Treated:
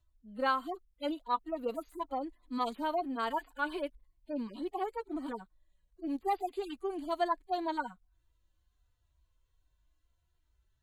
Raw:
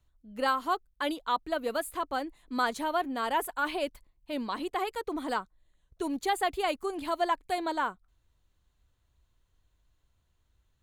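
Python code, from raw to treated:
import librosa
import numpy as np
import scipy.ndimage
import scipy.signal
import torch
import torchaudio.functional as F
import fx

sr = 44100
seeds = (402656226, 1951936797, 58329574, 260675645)

y = fx.hpss_only(x, sr, part='harmonic')
y = F.gain(torch.from_numpy(y), -2.0).numpy()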